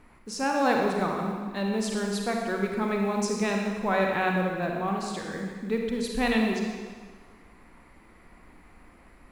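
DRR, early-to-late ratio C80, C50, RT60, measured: 0.5 dB, 3.5 dB, 1.5 dB, 1.6 s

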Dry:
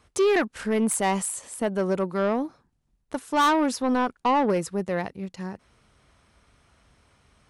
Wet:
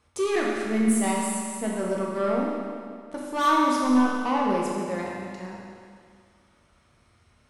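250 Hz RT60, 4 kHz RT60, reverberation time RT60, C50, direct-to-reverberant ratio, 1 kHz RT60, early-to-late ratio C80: 2.1 s, 2.0 s, 2.1 s, -0.5 dB, -3.5 dB, 2.1 s, 1.0 dB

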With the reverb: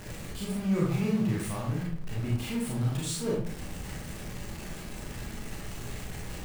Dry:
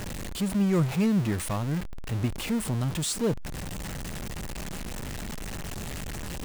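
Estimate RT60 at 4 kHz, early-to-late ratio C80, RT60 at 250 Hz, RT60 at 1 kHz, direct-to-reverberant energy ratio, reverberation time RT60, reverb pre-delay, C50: 0.40 s, 6.5 dB, 0.70 s, 0.50 s, -5.0 dB, 0.55 s, 28 ms, 1.5 dB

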